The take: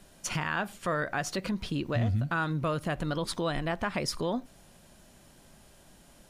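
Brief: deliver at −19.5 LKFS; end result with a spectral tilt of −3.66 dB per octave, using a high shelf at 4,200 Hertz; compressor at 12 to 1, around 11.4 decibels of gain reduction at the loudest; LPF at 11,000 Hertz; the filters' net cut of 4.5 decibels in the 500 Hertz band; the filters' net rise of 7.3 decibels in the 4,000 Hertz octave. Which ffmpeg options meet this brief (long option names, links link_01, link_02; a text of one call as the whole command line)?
ffmpeg -i in.wav -af "lowpass=11000,equalizer=frequency=500:width_type=o:gain=-6,equalizer=frequency=4000:width_type=o:gain=5.5,highshelf=frequency=4200:gain=6.5,acompressor=threshold=-33dB:ratio=12,volume=18dB" out.wav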